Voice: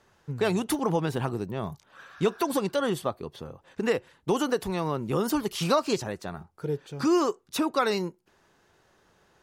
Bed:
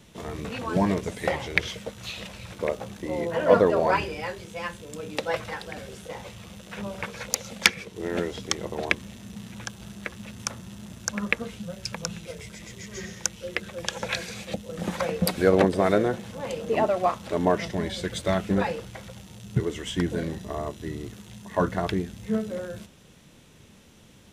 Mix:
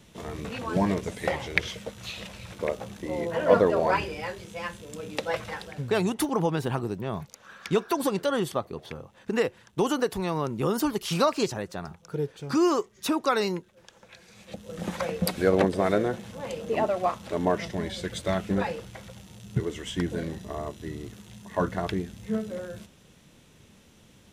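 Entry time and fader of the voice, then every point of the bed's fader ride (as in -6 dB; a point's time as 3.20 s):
5.50 s, +0.5 dB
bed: 5.63 s -1.5 dB
6.10 s -22.5 dB
14.13 s -22.5 dB
14.71 s -2.5 dB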